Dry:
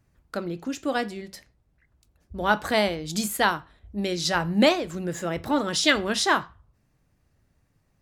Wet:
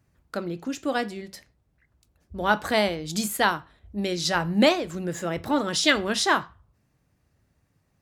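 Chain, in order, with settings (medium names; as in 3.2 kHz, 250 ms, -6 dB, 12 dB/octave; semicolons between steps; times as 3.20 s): high-pass 49 Hz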